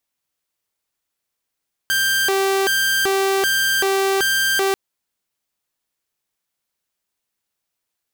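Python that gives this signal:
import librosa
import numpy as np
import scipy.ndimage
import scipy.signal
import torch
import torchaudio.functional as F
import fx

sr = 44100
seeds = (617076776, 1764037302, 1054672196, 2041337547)

y = fx.siren(sr, length_s=2.84, kind='hi-lo', low_hz=389.0, high_hz=1580.0, per_s=1.3, wave='saw', level_db=-13.5)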